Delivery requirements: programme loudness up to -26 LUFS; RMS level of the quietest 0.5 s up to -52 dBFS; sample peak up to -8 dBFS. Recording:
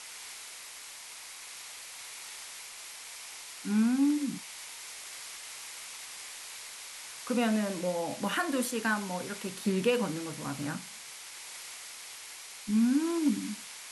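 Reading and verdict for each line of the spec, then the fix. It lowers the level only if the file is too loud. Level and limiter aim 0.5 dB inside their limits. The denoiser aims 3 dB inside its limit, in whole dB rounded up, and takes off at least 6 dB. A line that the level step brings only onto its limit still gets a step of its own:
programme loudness -34.0 LUFS: OK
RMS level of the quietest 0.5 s -46 dBFS: fail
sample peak -16.0 dBFS: OK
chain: denoiser 9 dB, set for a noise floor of -46 dBFS

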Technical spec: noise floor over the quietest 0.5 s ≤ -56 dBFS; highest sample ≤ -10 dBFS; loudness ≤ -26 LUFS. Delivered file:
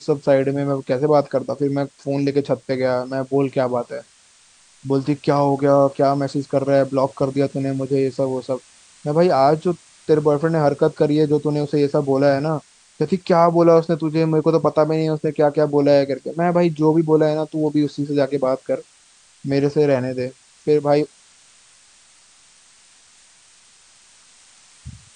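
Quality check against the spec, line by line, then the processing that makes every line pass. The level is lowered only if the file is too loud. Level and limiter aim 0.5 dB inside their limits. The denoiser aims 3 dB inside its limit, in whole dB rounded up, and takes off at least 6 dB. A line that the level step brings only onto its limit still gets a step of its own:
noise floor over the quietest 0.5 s -53 dBFS: fail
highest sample -2.0 dBFS: fail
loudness -19.0 LUFS: fail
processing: gain -7.5 dB; limiter -10.5 dBFS

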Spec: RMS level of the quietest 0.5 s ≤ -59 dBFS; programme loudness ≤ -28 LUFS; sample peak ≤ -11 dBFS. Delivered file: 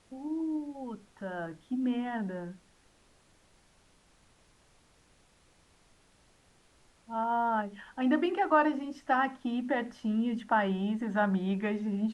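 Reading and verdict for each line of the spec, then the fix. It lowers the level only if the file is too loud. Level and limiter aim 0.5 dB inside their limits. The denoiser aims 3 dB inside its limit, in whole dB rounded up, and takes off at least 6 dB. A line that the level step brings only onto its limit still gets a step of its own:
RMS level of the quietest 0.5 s -64 dBFS: OK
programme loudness -31.5 LUFS: OK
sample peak -13.5 dBFS: OK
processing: none

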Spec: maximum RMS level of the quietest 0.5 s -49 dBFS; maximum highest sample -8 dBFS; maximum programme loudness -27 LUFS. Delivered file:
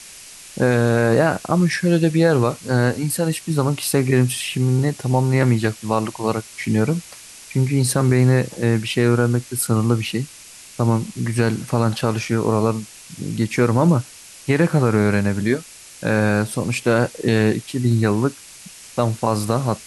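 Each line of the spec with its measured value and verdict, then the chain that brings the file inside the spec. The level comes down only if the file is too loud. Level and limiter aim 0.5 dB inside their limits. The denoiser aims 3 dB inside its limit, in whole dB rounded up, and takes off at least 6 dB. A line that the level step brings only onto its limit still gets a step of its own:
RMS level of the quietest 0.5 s -42 dBFS: fail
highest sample -4.5 dBFS: fail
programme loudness -19.5 LUFS: fail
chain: gain -8 dB

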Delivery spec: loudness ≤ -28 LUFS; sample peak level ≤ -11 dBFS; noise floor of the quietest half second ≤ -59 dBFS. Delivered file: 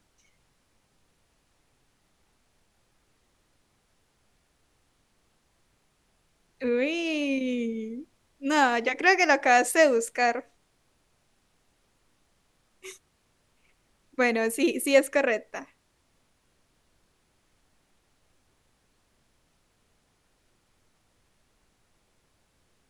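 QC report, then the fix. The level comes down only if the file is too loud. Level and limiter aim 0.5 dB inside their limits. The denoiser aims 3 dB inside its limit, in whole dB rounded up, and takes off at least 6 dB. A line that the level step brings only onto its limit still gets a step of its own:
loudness -24.5 LUFS: fail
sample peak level -7.0 dBFS: fail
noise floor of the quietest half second -69 dBFS: OK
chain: gain -4 dB; limiter -11.5 dBFS

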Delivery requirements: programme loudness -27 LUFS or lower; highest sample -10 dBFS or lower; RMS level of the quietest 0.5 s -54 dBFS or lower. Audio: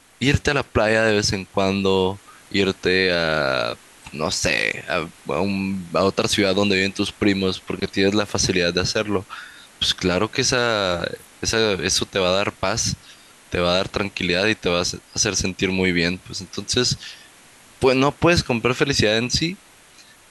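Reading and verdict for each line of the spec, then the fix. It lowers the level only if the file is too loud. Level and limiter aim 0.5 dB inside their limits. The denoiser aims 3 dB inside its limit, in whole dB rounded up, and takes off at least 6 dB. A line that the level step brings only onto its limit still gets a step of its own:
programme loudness -20.5 LUFS: fail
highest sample -5.0 dBFS: fail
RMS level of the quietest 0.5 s -49 dBFS: fail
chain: gain -7 dB

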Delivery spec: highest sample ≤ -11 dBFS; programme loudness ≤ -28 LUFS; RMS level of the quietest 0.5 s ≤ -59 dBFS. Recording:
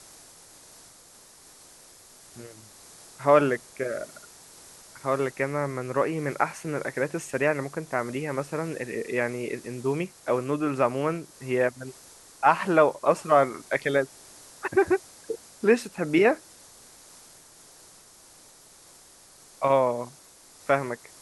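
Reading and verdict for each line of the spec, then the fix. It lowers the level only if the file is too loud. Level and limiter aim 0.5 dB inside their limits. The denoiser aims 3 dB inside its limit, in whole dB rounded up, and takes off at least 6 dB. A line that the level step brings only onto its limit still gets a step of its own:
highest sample -5.5 dBFS: fail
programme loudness -26.5 LUFS: fail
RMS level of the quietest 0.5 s -53 dBFS: fail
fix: denoiser 7 dB, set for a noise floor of -53 dBFS; gain -2 dB; limiter -11.5 dBFS

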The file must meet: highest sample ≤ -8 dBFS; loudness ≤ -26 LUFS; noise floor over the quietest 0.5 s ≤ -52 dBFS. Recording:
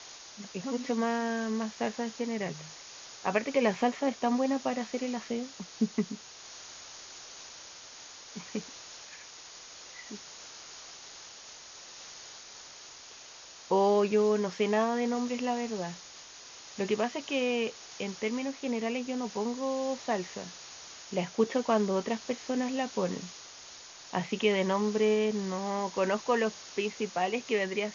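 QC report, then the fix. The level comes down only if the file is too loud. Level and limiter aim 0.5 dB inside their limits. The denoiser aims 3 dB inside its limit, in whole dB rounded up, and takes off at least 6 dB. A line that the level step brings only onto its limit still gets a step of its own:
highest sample -13.0 dBFS: OK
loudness -31.0 LUFS: OK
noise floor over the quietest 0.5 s -50 dBFS: fail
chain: denoiser 6 dB, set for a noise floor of -50 dBFS

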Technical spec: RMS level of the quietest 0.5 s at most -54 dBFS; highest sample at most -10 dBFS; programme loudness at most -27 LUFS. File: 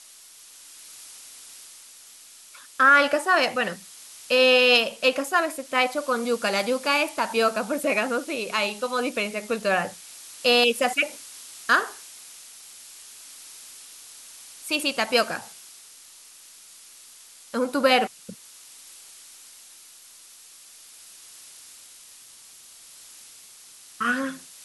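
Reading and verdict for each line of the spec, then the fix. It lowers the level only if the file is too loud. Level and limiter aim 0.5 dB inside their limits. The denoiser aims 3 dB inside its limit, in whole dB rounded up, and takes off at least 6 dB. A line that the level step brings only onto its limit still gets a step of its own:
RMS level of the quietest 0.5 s -49 dBFS: fail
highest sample -6.5 dBFS: fail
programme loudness -22.5 LUFS: fail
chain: denoiser 6 dB, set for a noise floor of -49 dBFS; gain -5 dB

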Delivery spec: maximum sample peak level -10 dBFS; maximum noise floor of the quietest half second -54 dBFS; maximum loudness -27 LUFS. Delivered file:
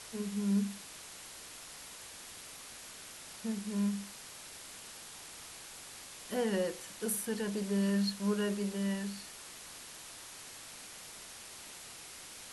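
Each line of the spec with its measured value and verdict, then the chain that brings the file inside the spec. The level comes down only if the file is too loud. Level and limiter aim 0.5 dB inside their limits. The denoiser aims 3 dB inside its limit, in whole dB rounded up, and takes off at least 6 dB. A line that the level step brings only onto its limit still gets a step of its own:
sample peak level -21.0 dBFS: OK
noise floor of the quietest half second -49 dBFS: fail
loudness -38.0 LUFS: OK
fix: denoiser 8 dB, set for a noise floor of -49 dBFS

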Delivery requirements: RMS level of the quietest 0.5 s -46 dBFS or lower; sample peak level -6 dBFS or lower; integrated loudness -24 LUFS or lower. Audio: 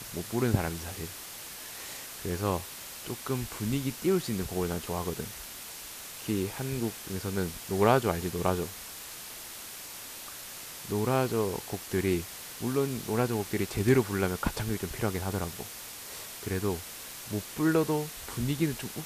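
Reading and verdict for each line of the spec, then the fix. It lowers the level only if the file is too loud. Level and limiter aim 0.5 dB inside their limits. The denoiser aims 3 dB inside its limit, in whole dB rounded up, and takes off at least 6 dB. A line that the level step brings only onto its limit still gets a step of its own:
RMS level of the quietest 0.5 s -43 dBFS: fail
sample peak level -9.0 dBFS: OK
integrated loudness -32.0 LUFS: OK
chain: denoiser 6 dB, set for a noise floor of -43 dBFS

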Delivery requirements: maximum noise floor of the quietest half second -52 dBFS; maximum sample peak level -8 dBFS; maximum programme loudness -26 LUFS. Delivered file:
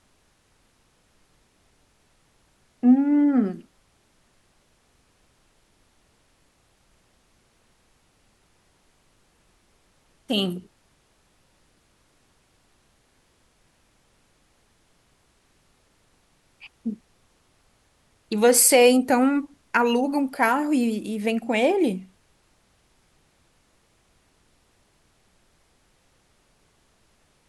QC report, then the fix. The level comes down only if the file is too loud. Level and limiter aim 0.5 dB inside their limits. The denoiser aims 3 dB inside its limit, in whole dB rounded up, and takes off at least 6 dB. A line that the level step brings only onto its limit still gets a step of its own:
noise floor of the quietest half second -64 dBFS: OK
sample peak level -6.0 dBFS: fail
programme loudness -21.0 LUFS: fail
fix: gain -5.5 dB

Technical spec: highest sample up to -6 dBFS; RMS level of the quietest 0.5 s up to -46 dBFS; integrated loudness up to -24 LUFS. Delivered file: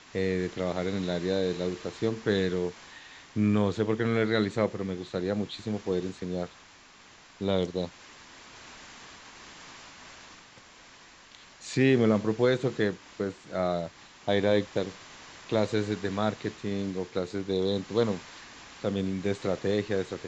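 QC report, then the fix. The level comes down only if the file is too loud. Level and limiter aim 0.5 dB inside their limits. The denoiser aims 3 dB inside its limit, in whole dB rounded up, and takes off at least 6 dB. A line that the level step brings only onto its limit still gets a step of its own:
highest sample -11.5 dBFS: OK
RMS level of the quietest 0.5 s -54 dBFS: OK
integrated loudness -29.5 LUFS: OK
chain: none

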